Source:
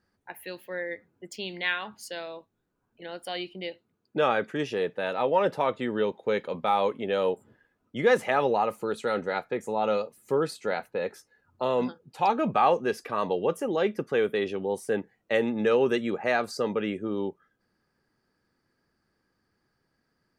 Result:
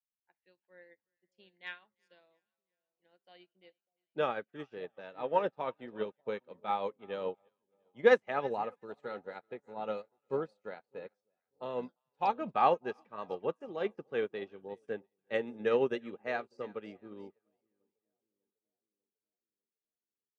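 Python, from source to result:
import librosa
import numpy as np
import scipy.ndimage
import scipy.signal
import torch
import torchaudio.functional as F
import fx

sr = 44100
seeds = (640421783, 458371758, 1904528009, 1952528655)

y = fx.air_absorb(x, sr, metres=88.0)
y = fx.echo_split(y, sr, split_hz=790.0, low_ms=598, high_ms=349, feedback_pct=52, wet_db=-15.0)
y = fx.upward_expand(y, sr, threshold_db=-44.0, expansion=2.5)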